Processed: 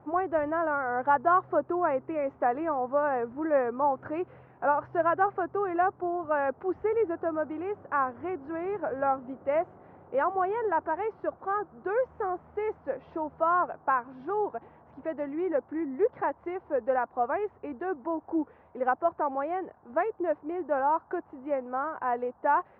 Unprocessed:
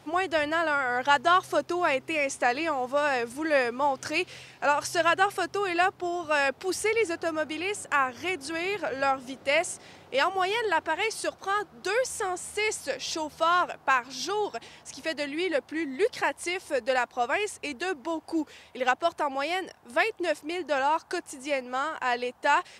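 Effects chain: LPF 1300 Hz 24 dB/oct

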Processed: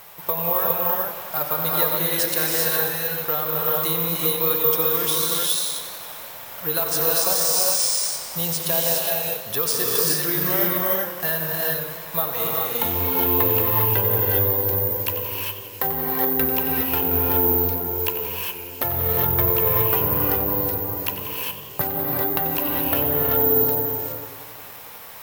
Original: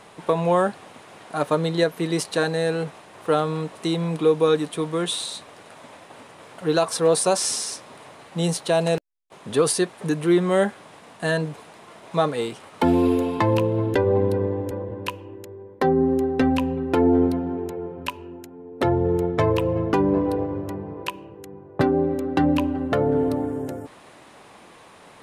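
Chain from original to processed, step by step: bell 280 Hz -13.5 dB 1.6 oct; compressor 3:1, threshold -28 dBFS, peak gain reduction 7.5 dB; non-linear reverb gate 0.44 s rising, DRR -2.5 dB; careless resampling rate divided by 3×, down none, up zero stuff; warbling echo 91 ms, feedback 76%, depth 101 cents, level -12 dB; gain +1.5 dB

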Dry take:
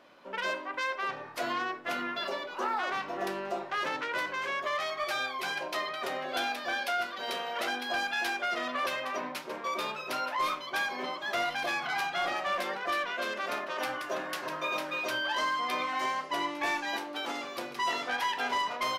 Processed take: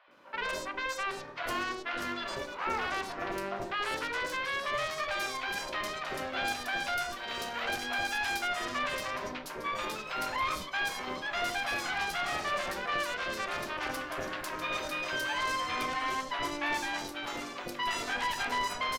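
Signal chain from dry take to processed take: added harmonics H 4 -12 dB, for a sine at -21 dBFS; three bands offset in time mids, lows, highs 80/110 ms, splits 680/3900 Hz; gain -1 dB

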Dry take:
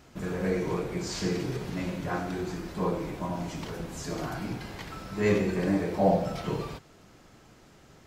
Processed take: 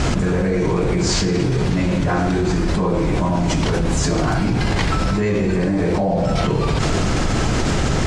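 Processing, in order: steep low-pass 9600 Hz 36 dB/oct; low shelf 100 Hz +11 dB; fast leveller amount 100%

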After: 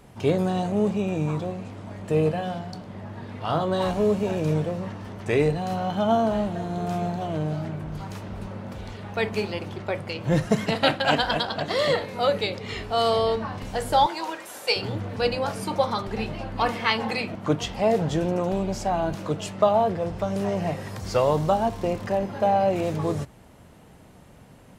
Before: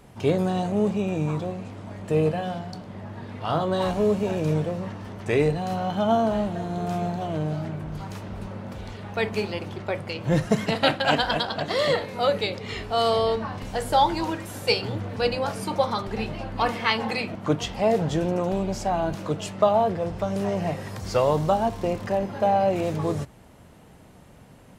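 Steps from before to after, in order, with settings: 14.06–14.76 HPF 510 Hz 12 dB/oct

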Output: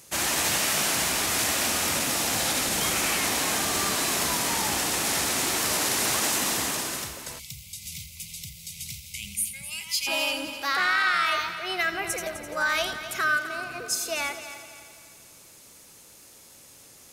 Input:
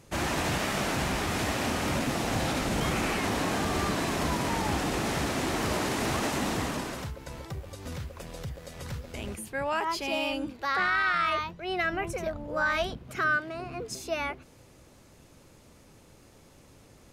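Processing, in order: tilt +2.5 dB/oct; multi-head echo 85 ms, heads first and third, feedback 59%, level -13 dB; spectral gain 7.39–10.07, 220–2000 Hz -27 dB; high shelf 4900 Hz +7.5 dB

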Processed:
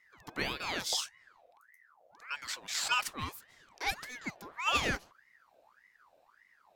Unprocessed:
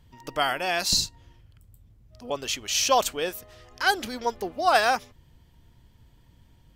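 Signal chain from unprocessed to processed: 3.29–4.49 band shelf 540 Hz -15 dB 1.1 oct; ring modulator with a swept carrier 1300 Hz, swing 55%, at 1.7 Hz; gain -7 dB

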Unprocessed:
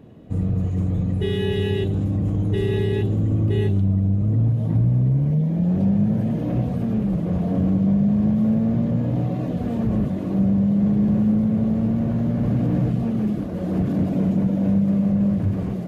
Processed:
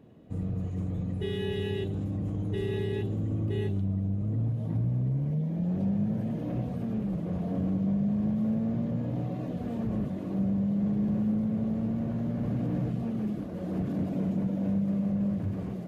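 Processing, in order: low shelf 100 Hz -5 dB; gain -8 dB

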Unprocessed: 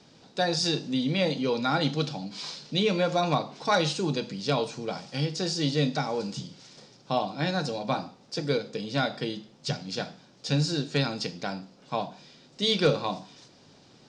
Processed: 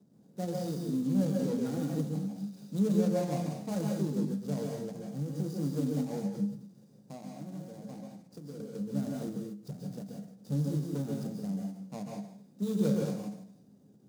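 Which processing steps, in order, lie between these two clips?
median filter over 41 samples; HPF 90 Hz; bell 200 Hz +10 dB 0.21 oct; harmonic-percussive split percussive -5 dB; EQ curve 270 Hz 0 dB, 2500 Hz -9 dB, 6500 Hz +7 dB; 6.4–8.6 compressor 2.5:1, threshold -42 dBFS, peak gain reduction 12 dB; plate-style reverb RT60 0.61 s, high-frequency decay 1×, pre-delay 0.12 s, DRR 0 dB; ending taper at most 140 dB/s; gain -4.5 dB

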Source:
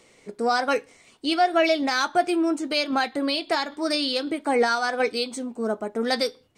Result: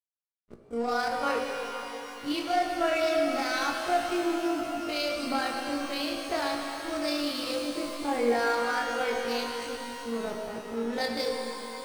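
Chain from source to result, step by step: backlash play -26 dBFS; granular stretch 1.8×, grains 77 ms; shimmer reverb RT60 3.7 s, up +12 st, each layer -8 dB, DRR 1 dB; gain -6.5 dB

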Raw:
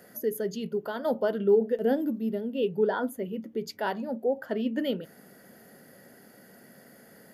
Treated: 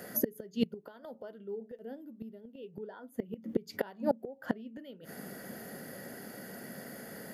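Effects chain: flipped gate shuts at -25 dBFS, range -27 dB; dynamic EQ 180 Hz, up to +5 dB, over -55 dBFS, Q 1.3; gain +7.5 dB

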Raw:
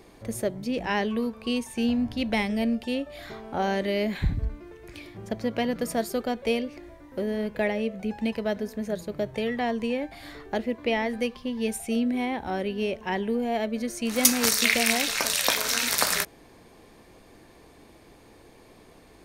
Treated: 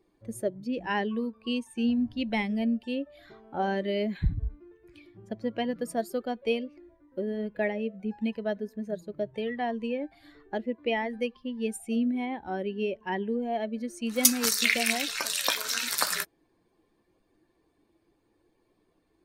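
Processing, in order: per-bin expansion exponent 1.5

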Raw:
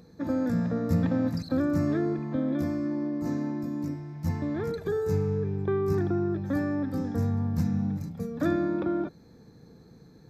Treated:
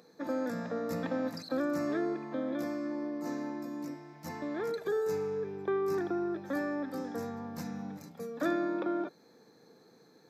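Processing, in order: HPF 400 Hz 12 dB/oct

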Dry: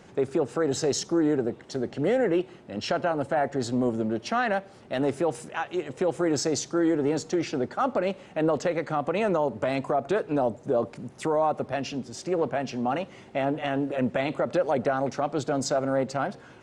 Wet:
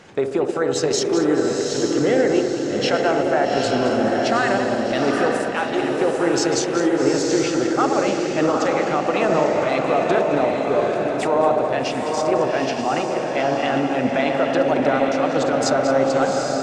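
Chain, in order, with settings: regenerating reverse delay 0.108 s, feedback 61%, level -9.5 dB; LPF 4000 Hz 6 dB/oct; tilt shelf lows -4.5 dB, about 1100 Hz; notches 60/120/180/240 Hz; in parallel at +2 dB: limiter -21 dBFS, peak gain reduction 7 dB; on the sum: band-limited delay 67 ms, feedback 72%, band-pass 440 Hz, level -5 dB; transient shaper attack +2 dB, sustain -4 dB; diffused feedback echo 0.812 s, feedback 42%, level -3 dB; 3.57–4.92 three-band squash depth 40%

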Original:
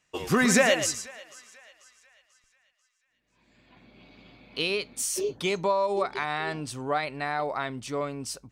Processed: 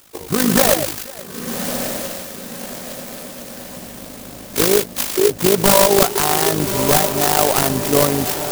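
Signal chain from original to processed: nonlinear frequency compression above 1800 Hz 1.5:1; AGC gain up to 15.5 dB; in parallel at -10 dB: requantised 6-bit, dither triangular; on the sum: wrapped overs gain 3.5 dB; AM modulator 52 Hz, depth 55%; diffused feedback echo 1.173 s, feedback 51%, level -8.5 dB; treble ducked by the level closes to 2700 Hz, closed at -13.5 dBFS; clock jitter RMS 0.14 ms; gain +2 dB

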